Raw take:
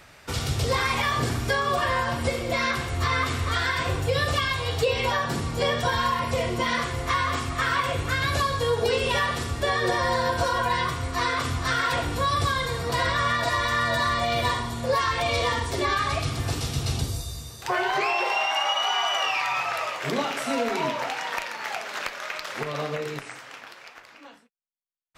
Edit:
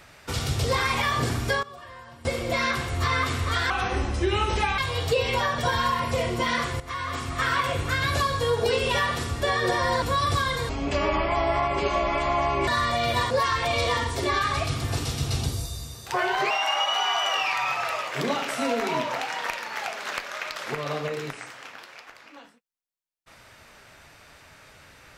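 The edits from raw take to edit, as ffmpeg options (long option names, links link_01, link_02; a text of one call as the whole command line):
ffmpeg -i in.wav -filter_complex "[0:a]asplit=12[link_01][link_02][link_03][link_04][link_05][link_06][link_07][link_08][link_09][link_10][link_11][link_12];[link_01]atrim=end=1.63,asetpts=PTS-STARTPTS,afade=type=out:start_time=1.4:duration=0.23:curve=log:silence=0.112202[link_13];[link_02]atrim=start=1.63:end=2.25,asetpts=PTS-STARTPTS,volume=-19dB[link_14];[link_03]atrim=start=2.25:end=3.704,asetpts=PTS-STARTPTS,afade=type=in:duration=0.23:curve=log:silence=0.112202[link_15];[link_04]atrim=start=3.7:end=4.49,asetpts=PTS-STARTPTS,asetrate=32193,aresample=44100[link_16];[link_05]atrim=start=4.486:end=5.292[link_17];[link_06]atrim=start=5.778:end=7,asetpts=PTS-STARTPTS,afade=type=out:start_time=1.218:duration=0.004:curve=hsin:silence=0.223872[link_18];[link_07]atrim=start=7:end=10.222,asetpts=PTS-STARTPTS,afade=type=in:duration=0.65:silence=0.223872[link_19];[link_08]atrim=start=12.118:end=12.794[link_20];[link_09]atrim=start=12.79:end=13.96,asetpts=PTS-STARTPTS,asetrate=26019,aresample=44100[link_21];[link_10]atrim=start=13.956:end=14.592[link_22];[link_11]atrim=start=14.858:end=18.062[link_23];[link_12]atrim=start=18.388[link_24];[link_13][link_14][link_15]concat=n=3:v=0:a=1[link_25];[link_25][link_16]acrossfade=duration=0.004:curve1=hsin:curve2=hsin[link_26];[link_26][link_17]acrossfade=duration=0.004:curve1=hsin:curve2=hsin[link_27];[link_18][link_19]concat=n=2:v=0:a=1[link_28];[link_27][link_28]acrossfade=duration=0.004:curve1=hsin:curve2=hsin[link_29];[link_29][link_20]acrossfade=duration=0.004:curve1=hsin:curve2=hsin[link_30];[link_30][link_21]acrossfade=duration=0.004:curve1=hsin:curve2=hsin[link_31];[link_31][link_22]acrossfade=duration=0.004:curve1=hsin:curve2=hsin[link_32];[link_32][link_23]acrossfade=duration=0.004:curve1=hsin:curve2=hsin[link_33];[link_33][link_24]acrossfade=duration=0.004:curve1=hsin:curve2=hsin" out.wav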